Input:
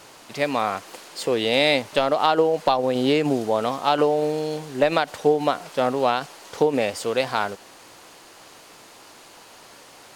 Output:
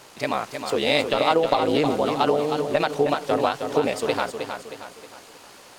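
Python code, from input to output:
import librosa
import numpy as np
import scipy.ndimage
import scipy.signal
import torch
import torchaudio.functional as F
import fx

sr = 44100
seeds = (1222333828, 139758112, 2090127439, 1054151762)

y = fx.stretch_grains(x, sr, factor=0.57, grain_ms=34.0)
y = fx.echo_feedback(y, sr, ms=314, feedback_pct=43, wet_db=-7)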